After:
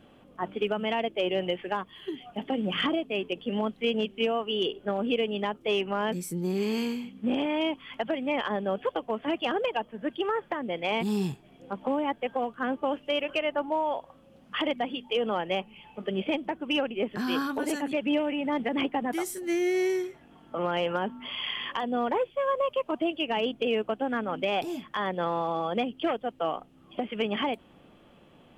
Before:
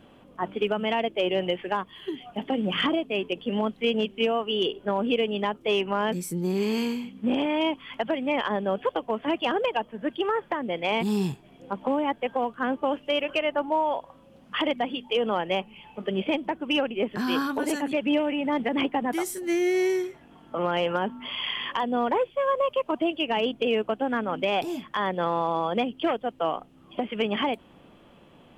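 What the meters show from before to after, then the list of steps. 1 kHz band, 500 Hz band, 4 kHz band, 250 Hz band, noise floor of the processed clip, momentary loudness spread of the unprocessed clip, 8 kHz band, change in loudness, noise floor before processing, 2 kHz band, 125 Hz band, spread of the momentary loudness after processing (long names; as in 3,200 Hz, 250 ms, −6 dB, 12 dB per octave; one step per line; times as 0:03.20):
−3.0 dB, −2.5 dB, −2.5 dB, −2.5 dB, −57 dBFS, 6 LU, −2.5 dB, −2.5 dB, −54 dBFS, −2.5 dB, −2.5 dB, 6 LU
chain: notch filter 980 Hz, Q 17
level −2.5 dB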